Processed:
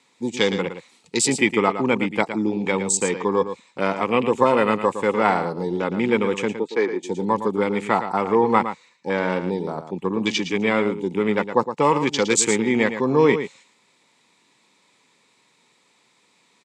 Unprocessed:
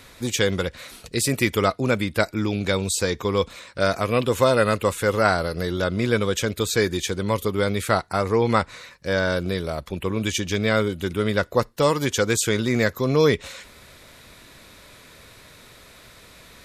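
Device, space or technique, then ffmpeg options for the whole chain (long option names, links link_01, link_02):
television speaker: -filter_complex "[0:a]afwtdn=0.0316,highpass=frequency=170:width=0.5412,highpass=frequency=170:width=1.3066,equalizer=frequency=620:width_type=q:width=4:gain=-10,equalizer=frequency=880:width_type=q:width=4:gain=9,equalizer=frequency=1500:width_type=q:width=4:gain=-9,equalizer=frequency=2300:width_type=q:width=4:gain=3,equalizer=frequency=7600:width_type=q:width=4:gain=6,lowpass=frequency=8600:width=0.5412,lowpass=frequency=8600:width=1.3066,asettb=1/sr,asplit=3[link_01][link_02][link_03];[link_01]atrim=end=6.564[link_04];[link_02]atrim=start=6.56:end=7.03,asetpts=PTS-STARTPTS,afade=type=in:duration=0.004:curve=qsin,afade=type=out:start_time=0.466:duration=0.004:curve=qsin,acrossover=split=260 2200:gain=0.0708 1 0.1[link_05][link_06][link_07];[link_05][link_06][link_07]amix=inputs=3:normalize=0[link_08];[link_03]atrim=start=7.026[link_09];[link_04][link_08]acrossfade=duration=0.004:curve1=hsin:curve2=qsin[link_10];[link_10][link_09]acrossfade=duration=0.004:curve1=qsin:curve2=hsin,aecho=1:1:113:0.316,volume=3dB"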